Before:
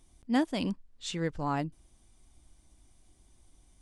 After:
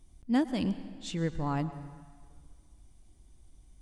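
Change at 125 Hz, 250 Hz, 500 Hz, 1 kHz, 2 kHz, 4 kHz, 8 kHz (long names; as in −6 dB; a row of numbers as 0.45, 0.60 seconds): +3.0, +1.0, −1.5, −2.5, −3.0, −3.5, −3.5 decibels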